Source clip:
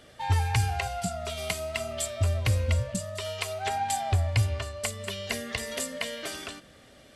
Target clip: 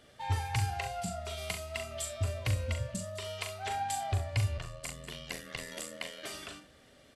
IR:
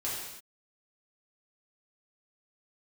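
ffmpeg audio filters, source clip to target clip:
-filter_complex "[0:a]aecho=1:1:40|67:0.447|0.188,asettb=1/sr,asplit=3[link_01][link_02][link_03];[link_01]atrim=end=4.574[link_04];[link_02]atrim=start=4.57:end=6.24,asetpts=PTS-STARTPTS,afade=type=in:duration=0.004:curve=qsin,afade=type=out:start_time=1.666:duration=0.004:curve=qsin,aeval=exprs='val(0)*sin(2*PI*41*n/s)':channel_layout=same[link_05];[link_03]atrim=start=6.236[link_06];[link_04][link_05]acrossfade=duration=0.004:curve1=hsin:curve2=qsin[link_07];[link_07][link_06]acrossfade=duration=0.004:curve1=qsin:curve2=hsin,volume=-6.5dB"

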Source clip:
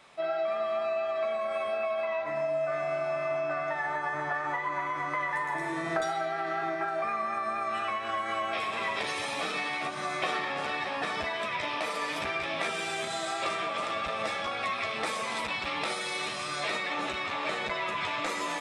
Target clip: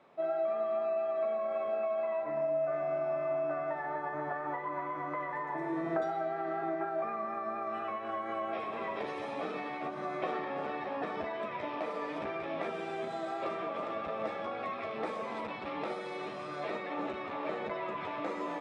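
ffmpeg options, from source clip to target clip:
ffmpeg -i in.wav -af "bandpass=frequency=350:width_type=q:width=0.75:csg=0,volume=1.5dB" out.wav

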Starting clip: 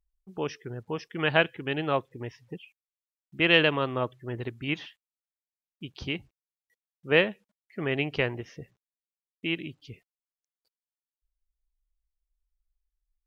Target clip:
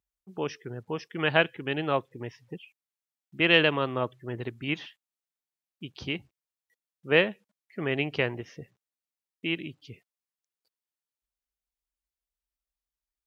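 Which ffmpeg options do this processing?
ffmpeg -i in.wav -af "highpass=94" out.wav

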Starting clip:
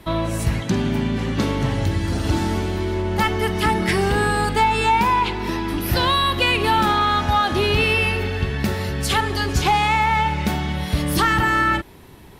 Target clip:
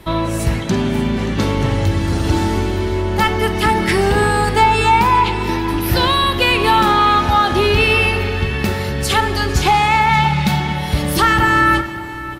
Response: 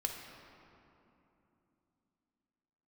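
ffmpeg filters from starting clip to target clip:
-filter_complex "[0:a]asettb=1/sr,asplit=3[link_01][link_02][link_03];[link_01]atrim=end=10.094[link_04];[link_02]atrim=start=10.09:end=10.6,asetpts=PTS-STARTPTS,afade=type=in:duration=0.004:curve=qsin,afade=type=out:start_time=0.506:duration=0.004:curve=qsin,equalizer=frequency=160:width_type=o:width=0.67:gain=8,equalizer=frequency=400:width_type=o:width=0.67:gain=-11,equalizer=frequency=4000:width_type=o:width=0.67:gain=6[link_05];[link_03]atrim=start=10.596[link_06];[link_04][link_05]acrossfade=duration=0.004:curve1=hsin:curve2=qsin[link_07];[link_07][link_06]acrossfade=duration=0.004:curve1=qsin:curve2=hsin,aecho=1:1:578:0.168,asplit=2[link_08][link_09];[1:a]atrim=start_sample=2205[link_10];[link_09][link_10]afir=irnorm=-1:irlink=0,volume=-5dB[link_11];[link_08][link_11]amix=inputs=2:normalize=0"

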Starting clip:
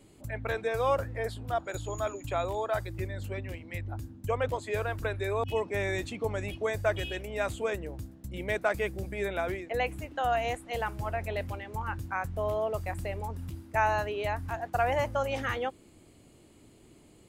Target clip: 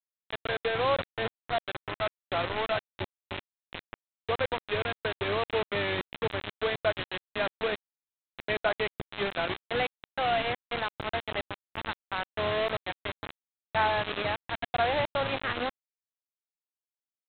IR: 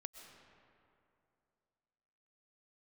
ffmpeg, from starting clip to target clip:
-af "highpass=frequency=97:width=0.5412,highpass=frequency=97:width=1.3066,aresample=8000,acrusher=bits=4:mix=0:aa=0.000001,aresample=44100"

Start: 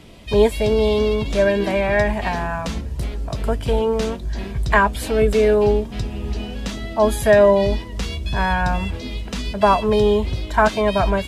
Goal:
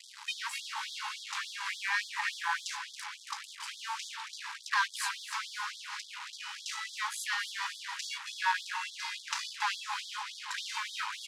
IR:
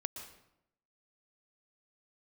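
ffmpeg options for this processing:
-filter_complex "[0:a]aeval=exprs='(tanh(8.91*val(0)+0.3)-tanh(0.3))/8.91':channel_layout=same,acrossover=split=120|4000[link_01][link_02][link_03];[link_02]adynamicsmooth=sensitivity=3:basefreq=1500[link_04];[link_01][link_04][link_03]amix=inputs=3:normalize=0,alimiter=limit=-19.5dB:level=0:latency=1:release=355,asplit=2[link_05][link_06];[link_06]aecho=0:1:276|552|828|1104|1380:0.251|0.118|0.0555|0.0261|0.0123[link_07];[link_05][link_07]amix=inputs=2:normalize=0,acompressor=threshold=-29dB:ratio=2.5,acrusher=bits=6:mix=0:aa=0.5,lowpass=6400,afftfilt=real='re*gte(b*sr/1024,780*pow(3300/780,0.5+0.5*sin(2*PI*3.5*pts/sr)))':imag='im*gte(b*sr/1024,780*pow(3300/780,0.5+0.5*sin(2*PI*3.5*pts/sr)))':win_size=1024:overlap=0.75,volume=8dB"

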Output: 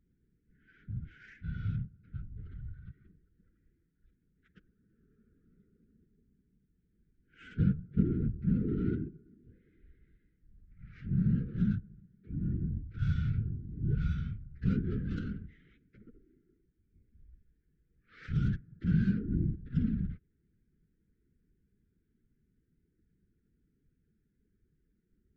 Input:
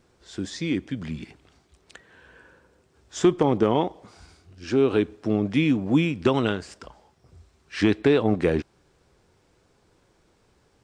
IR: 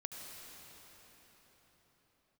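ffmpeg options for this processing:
-af "equalizer=frequency=250:width_type=o:width=0.67:gain=-5,equalizer=frequency=1000:width_type=o:width=0.67:gain=-4,equalizer=frequency=6300:width_type=o:width=0.67:gain=-6,adynamicsmooth=sensitivity=4:basefreq=2600,afftfilt=real='hypot(re,im)*cos(2*PI*random(0))':imag='hypot(re,im)*sin(2*PI*random(1))':win_size=512:overlap=0.75,asuperstop=centerf=1900:order=12:qfactor=0.83,asetrate=18846,aresample=44100,volume=-2dB"

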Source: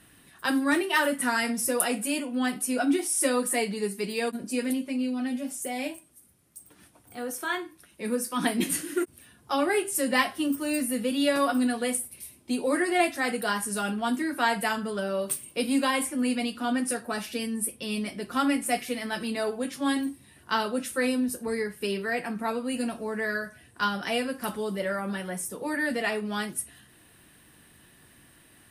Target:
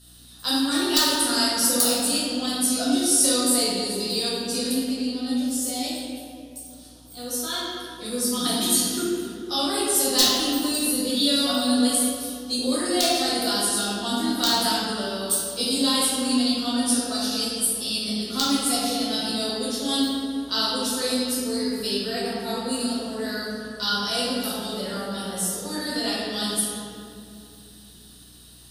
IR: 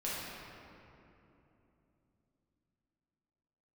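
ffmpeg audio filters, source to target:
-filter_complex "[0:a]equalizer=frequency=1300:width_type=o:width=0.29:gain=3.5,acrossover=split=230[link_01][link_02];[link_02]aeval=exprs='(mod(3.76*val(0)+1,2)-1)/3.76':channel_layout=same[link_03];[link_01][link_03]amix=inputs=2:normalize=0[link_04];[1:a]atrim=start_sample=2205,asetrate=57330,aresample=44100[link_05];[link_04][link_05]afir=irnorm=-1:irlink=0,aeval=exprs='val(0)+0.00282*(sin(2*PI*60*n/s)+sin(2*PI*2*60*n/s)/2+sin(2*PI*3*60*n/s)/3+sin(2*PI*4*60*n/s)/4+sin(2*PI*5*60*n/s)/5)':channel_layout=same,highshelf=frequency=3000:width_type=q:width=3:gain=11.5,volume=-2dB"

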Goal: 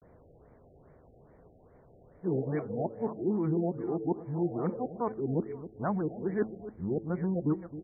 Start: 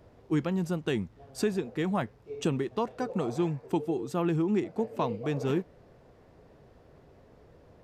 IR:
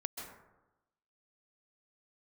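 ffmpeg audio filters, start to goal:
-filter_complex "[0:a]areverse,bandreject=frequency=109.6:width_type=h:width=4,bandreject=frequency=219.2:width_type=h:width=4,bandreject=frequency=328.8:width_type=h:width=4,bandreject=frequency=438.4:width_type=h:width=4,bandreject=frequency=548:width_type=h:width=4,asplit=2[link_01][link_02];[link_02]aecho=0:1:266|532|798:0.2|0.0599|0.018[link_03];[link_01][link_03]amix=inputs=2:normalize=0,afftfilt=real='re*lt(b*sr/1024,780*pow(2400/780,0.5+0.5*sin(2*PI*2.4*pts/sr)))':imag='im*lt(b*sr/1024,780*pow(2400/780,0.5+0.5*sin(2*PI*2.4*pts/sr)))':win_size=1024:overlap=0.75,volume=-1.5dB"

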